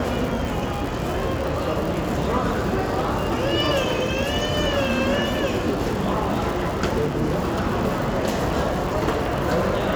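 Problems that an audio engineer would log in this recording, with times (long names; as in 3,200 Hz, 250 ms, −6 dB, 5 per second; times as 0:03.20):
surface crackle 120 per second −26 dBFS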